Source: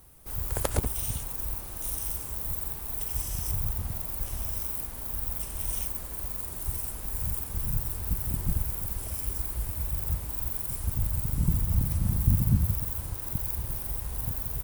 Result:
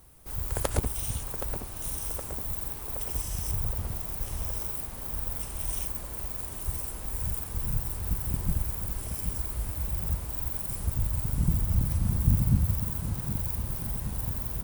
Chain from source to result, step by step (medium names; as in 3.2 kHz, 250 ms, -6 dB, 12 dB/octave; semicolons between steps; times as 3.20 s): peaking EQ 14 kHz -12 dB 0.24 oct; tape echo 770 ms, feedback 78%, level -7 dB, low-pass 2.4 kHz